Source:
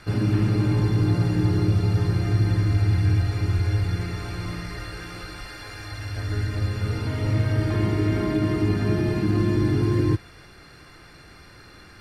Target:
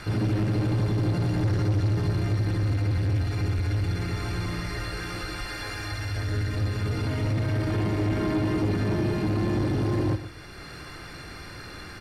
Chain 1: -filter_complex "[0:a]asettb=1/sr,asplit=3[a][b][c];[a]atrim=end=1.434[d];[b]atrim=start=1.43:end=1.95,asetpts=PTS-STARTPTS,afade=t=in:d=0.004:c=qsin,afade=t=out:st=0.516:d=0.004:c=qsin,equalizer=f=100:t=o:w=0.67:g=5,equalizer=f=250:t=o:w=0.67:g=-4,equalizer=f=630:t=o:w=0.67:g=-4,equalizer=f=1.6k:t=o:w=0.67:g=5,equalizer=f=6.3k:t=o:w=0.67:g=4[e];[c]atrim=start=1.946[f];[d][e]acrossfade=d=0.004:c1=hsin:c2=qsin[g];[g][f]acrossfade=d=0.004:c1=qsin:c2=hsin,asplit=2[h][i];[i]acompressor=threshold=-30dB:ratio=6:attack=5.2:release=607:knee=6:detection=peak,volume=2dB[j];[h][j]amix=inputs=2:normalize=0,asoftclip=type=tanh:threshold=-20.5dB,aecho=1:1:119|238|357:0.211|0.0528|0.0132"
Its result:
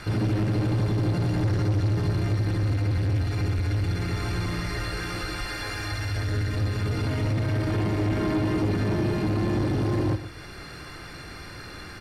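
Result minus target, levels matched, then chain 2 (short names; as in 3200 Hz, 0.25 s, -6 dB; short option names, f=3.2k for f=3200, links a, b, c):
compressor: peak gain reduction -7 dB
-filter_complex "[0:a]asettb=1/sr,asplit=3[a][b][c];[a]atrim=end=1.434[d];[b]atrim=start=1.43:end=1.95,asetpts=PTS-STARTPTS,afade=t=in:d=0.004:c=qsin,afade=t=out:st=0.516:d=0.004:c=qsin,equalizer=f=100:t=o:w=0.67:g=5,equalizer=f=250:t=o:w=0.67:g=-4,equalizer=f=630:t=o:w=0.67:g=-4,equalizer=f=1.6k:t=o:w=0.67:g=5,equalizer=f=6.3k:t=o:w=0.67:g=4[e];[c]atrim=start=1.946[f];[d][e]acrossfade=d=0.004:c1=hsin:c2=qsin[g];[g][f]acrossfade=d=0.004:c1=qsin:c2=hsin,asplit=2[h][i];[i]acompressor=threshold=-38.5dB:ratio=6:attack=5.2:release=607:knee=6:detection=peak,volume=2dB[j];[h][j]amix=inputs=2:normalize=0,asoftclip=type=tanh:threshold=-20.5dB,aecho=1:1:119|238|357:0.211|0.0528|0.0132"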